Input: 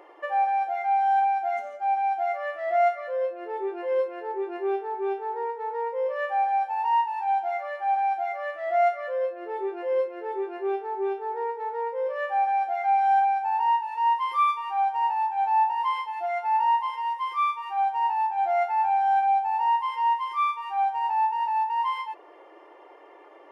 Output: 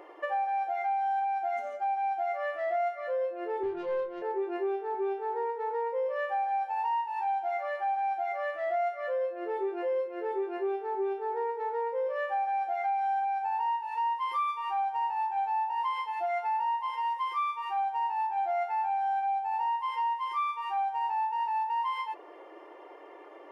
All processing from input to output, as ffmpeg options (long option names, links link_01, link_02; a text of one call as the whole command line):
ffmpeg -i in.wav -filter_complex "[0:a]asettb=1/sr,asplit=3[link_01][link_02][link_03];[link_01]atrim=end=3.634[link_04];[link_02]atrim=start=3.63:end=4.22,asetpts=PTS-STARTPTS,afade=type=in:duration=0.004:curve=qsin,afade=type=out:start_time=0.586:duration=0.004:curve=qsin,equalizer=frequency=520:width=2.2:gain=-8,adynamicsmooth=sensitivity=4:basefreq=590,asplit=2[link_05][link_06];[link_06]adelay=25,volume=-5dB[link_07];[link_05][link_07]amix=inputs=2:normalize=0,atrim=end_sample=26019[link_08];[link_03]atrim=start=4.216[link_09];[link_04][link_08]acrossfade=duration=0.004:curve1=hsin:curve2=qsin[link_10];[link_10][link_09]acrossfade=duration=0.004:curve1=qsin:curve2=hsin,lowshelf=frequency=320:gain=5,bandreject=frequency=850:width=22,acompressor=threshold=-28dB:ratio=6" out.wav